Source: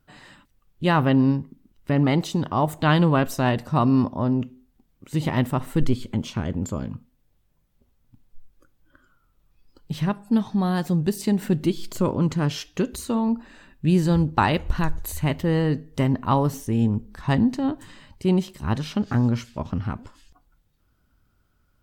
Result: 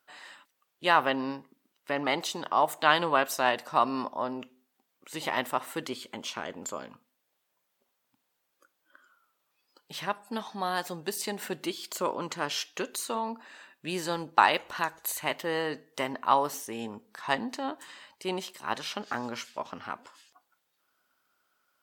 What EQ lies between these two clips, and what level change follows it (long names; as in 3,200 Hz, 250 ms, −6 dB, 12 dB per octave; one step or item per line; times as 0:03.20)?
high-pass filter 650 Hz 12 dB per octave
+1.0 dB